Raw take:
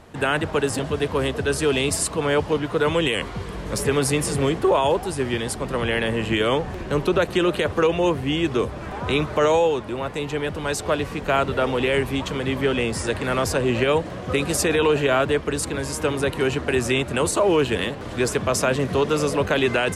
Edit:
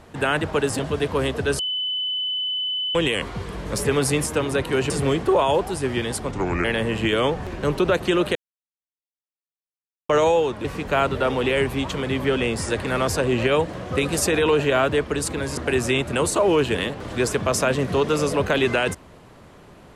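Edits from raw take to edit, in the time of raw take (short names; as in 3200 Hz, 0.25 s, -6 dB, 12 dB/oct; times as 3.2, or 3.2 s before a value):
1.59–2.95 bleep 3010 Hz -22.5 dBFS
5.67–5.92 speed 75%
7.63–9.37 mute
9.92–11.01 cut
15.94–16.58 move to 4.26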